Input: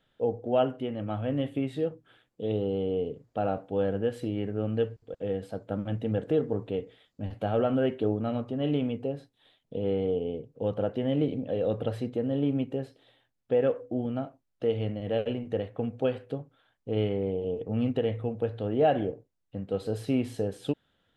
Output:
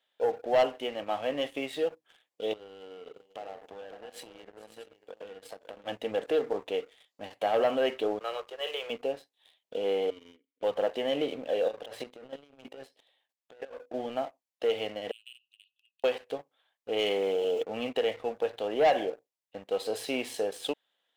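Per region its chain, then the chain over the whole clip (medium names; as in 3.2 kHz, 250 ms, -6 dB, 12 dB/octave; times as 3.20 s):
2.53–5.86 s: compression 16:1, threshold -39 dBFS + multi-tap echo 42/438/545/632 ms -17/-17.5/-9.5/-18.5 dB
8.19–8.90 s: rippled Chebyshev high-pass 340 Hz, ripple 9 dB + treble shelf 2.4 kHz +10 dB
10.10–10.63 s: companding laws mixed up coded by A + vowel filter i
11.68–13.94 s: hum notches 50/100/150/200/250/300/350 Hz + compressor with a negative ratio -34 dBFS + square tremolo 3.1 Hz, depth 65%, duty 10%
15.11–16.04 s: FFT filter 210 Hz 0 dB, 310 Hz -10 dB, 710 Hz +13 dB, 1 kHz -14 dB, 2.5 kHz -4 dB, 6.8 kHz -18 dB + compression, threshold -26 dBFS + brick-wall FIR high-pass 2.5 kHz
16.99–17.63 s: tone controls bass 0 dB, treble +14 dB + level flattener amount 50%
whole clip: high-pass 740 Hz 12 dB/octave; peaking EQ 1.4 kHz -10 dB 0.35 oct; waveshaping leveller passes 2; trim +2 dB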